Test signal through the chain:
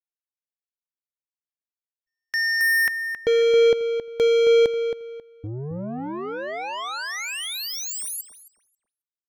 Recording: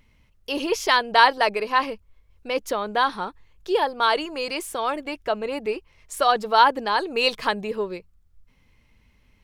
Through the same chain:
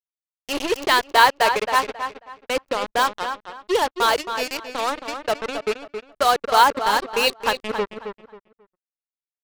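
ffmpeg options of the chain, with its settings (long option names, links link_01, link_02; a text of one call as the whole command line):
ffmpeg -i in.wav -filter_complex "[0:a]acrusher=bits=3:mix=0:aa=0.5,anlmdn=1.58,asplit=2[link_01][link_02];[link_02]adelay=270,lowpass=frequency=3400:poles=1,volume=-8dB,asplit=2[link_03][link_04];[link_04]adelay=270,lowpass=frequency=3400:poles=1,volume=0.26,asplit=2[link_05][link_06];[link_06]adelay=270,lowpass=frequency=3400:poles=1,volume=0.26[link_07];[link_01][link_03][link_05][link_07]amix=inputs=4:normalize=0,volume=1dB" out.wav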